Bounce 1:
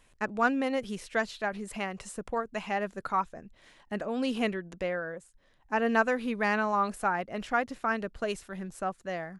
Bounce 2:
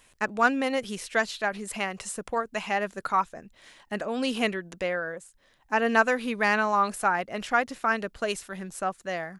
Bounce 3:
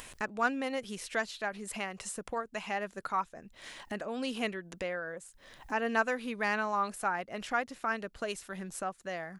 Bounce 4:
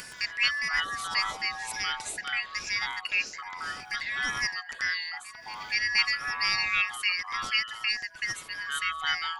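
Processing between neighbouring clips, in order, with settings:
tilt EQ +1.5 dB/octave; trim +4 dB
upward compressor, threshold -26 dBFS; trim -7.5 dB
four frequency bands reordered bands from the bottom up 3142; ever faster or slower copies 120 ms, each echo -7 st, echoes 2, each echo -6 dB; reverse echo 474 ms -20 dB; trim +3.5 dB

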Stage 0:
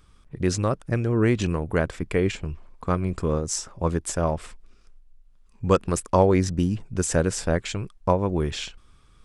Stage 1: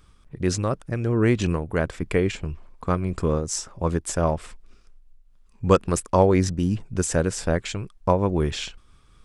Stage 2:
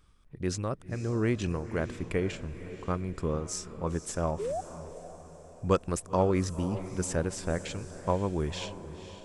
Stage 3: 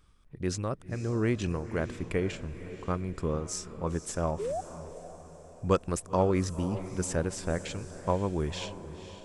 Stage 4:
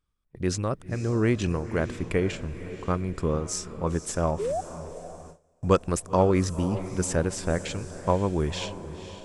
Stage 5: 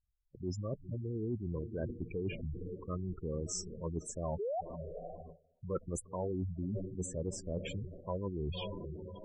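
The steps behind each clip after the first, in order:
random flutter of the level, depth 55%; trim +3.5 dB
painted sound rise, 4.39–4.61 s, 380–790 Hz -24 dBFS; on a send: echo that smears into a reverb 515 ms, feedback 47%, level -12.5 dB; on the sum: trim -8 dB
no audible change
gate with hold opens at -39 dBFS; trim +4.5 dB
spectral gate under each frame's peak -10 dB strong; reverse; compression 6:1, threshold -30 dBFS, peak gain reduction 13.5 dB; reverse; trim -4 dB

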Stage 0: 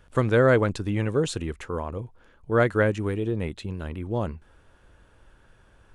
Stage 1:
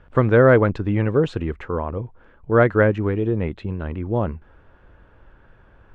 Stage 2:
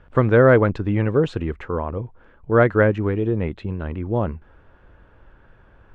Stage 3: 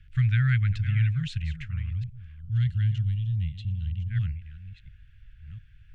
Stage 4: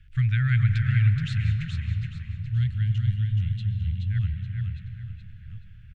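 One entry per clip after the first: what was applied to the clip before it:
low-pass 2.1 kHz 12 dB/octave; trim +5.5 dB
no audible change
chunks repeated in reverse 698 ms, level -12.5 dB; time-frequency box 2.41–4.10 s, 310–2700 Hz -15 dB; inverse Chebyshev band-stop 280–1000 Hz, stop band 50 dB
feedback delay 425 ms, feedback 33%, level -5 dB; algorithmic reverb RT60 3.6 s, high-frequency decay 0.45×, pre-delay 95 ms, DRR 9 dB

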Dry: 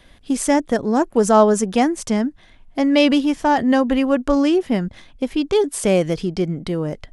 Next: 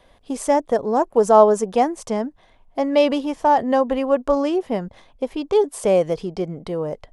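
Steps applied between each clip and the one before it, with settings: high-order bell 690 Hz +9 dB; trim -7 dB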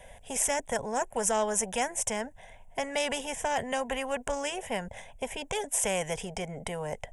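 peaking EQ 7.9 kHz +12 dB 1.1 oct; static phaser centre 1.2 kHz, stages 6; spectrum-flattening compressor 2:1; trim -8.5 dB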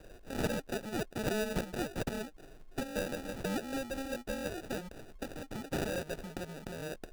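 in parallel at -1 dB: compression, threshold -38 dBFS, peak gain reduction 14 dB; on the sum: static phaser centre 420 Hz, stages 6; sample-and-hold 41×; trim -6 dB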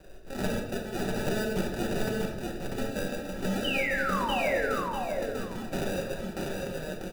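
painted sound fall, 3.64–4.67 s, 410–3100 Hz -33 dBFS; on a send: feedback delay 644 ms, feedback 18%, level -3 dB; on the sum: simulated room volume 370 m³, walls mixed, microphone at 1.1 m

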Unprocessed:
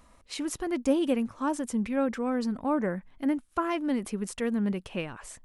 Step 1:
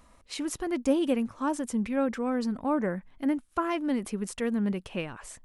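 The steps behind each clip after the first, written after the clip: no audible change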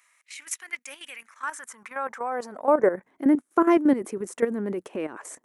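high-order bell 3.6 kHz -8.5 dB 1.2 oct; high-pass sweep 2.3 kHz -> 340 Hz, 1.17–3.10 s; level held to a coarse grid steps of 12 dB; trim +7.5 dB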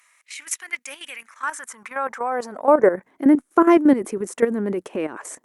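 trim +5 dB; Opus 96 kbps 48 kHz

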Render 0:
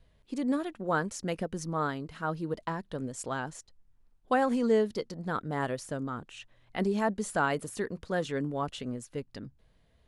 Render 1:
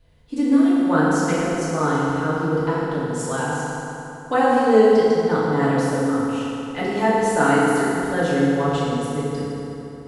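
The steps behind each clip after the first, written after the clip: FDN reverb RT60 3.2 s, high-frequency decay 0.7×, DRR -9 dB; trim +1.5 dB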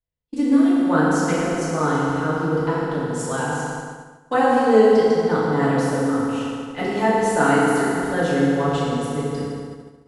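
expander -26 dBFS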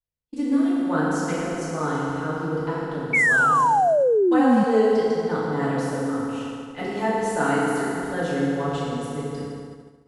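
painted sound fall, 3.13–4.64 s, 200–2300 Hz -13 dBFS; trim -5 dB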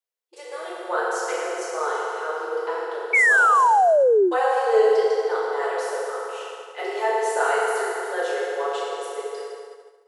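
brick-wall FIR high-pass 350 Hz; trim +2 dB

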